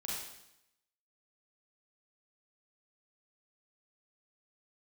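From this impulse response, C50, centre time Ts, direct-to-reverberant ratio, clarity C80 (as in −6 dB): −1.5 dB, 75 ms, −5.5 dB, 2.5 dB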